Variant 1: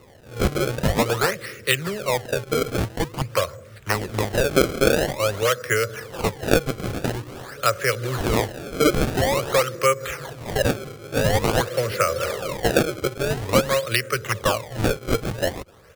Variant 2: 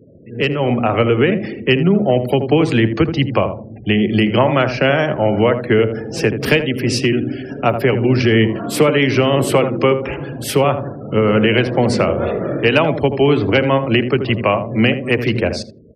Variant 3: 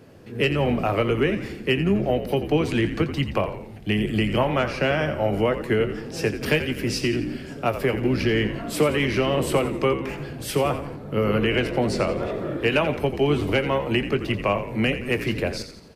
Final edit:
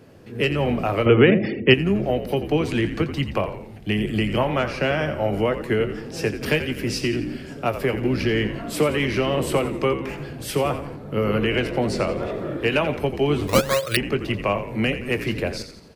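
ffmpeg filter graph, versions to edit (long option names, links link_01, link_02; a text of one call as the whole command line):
ffmpeg -i take0.wav -i take1.wav -i take2.wav -filter_complex "[2:a]asplit=3[link_01][link_02][link_03];[link_01]atrim=end=1.062[link_04];[1:a]atrim=start=1.058:end=1.742[link_05];[link_02]atrim=start=1.738:end=13.482[link_06];[0:a]atrim=start=13.478:end=13.972[link_07];[link_03]atrim=start=13.968[link_08];[link_04][link_05]acrossfade=duration=0.004:curve1=hsin:curve2=hsin[link_09];[link_09][link_06]acrossfade=duration=0.004:curve1=hsin:curve2=hsin[link_10];[link_10][link_07]acrossfade=duration=0.004:curve1=hsin:curve2=hsin[link_11];[link_11][link_08]acrossfade=duration=0.004:curve1=hsin:curve2=hsin" out.wav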